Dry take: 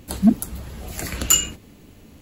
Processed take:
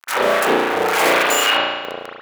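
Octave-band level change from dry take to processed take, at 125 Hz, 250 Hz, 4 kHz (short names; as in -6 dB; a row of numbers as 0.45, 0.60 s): -11.5, -5.0, +8.5 dB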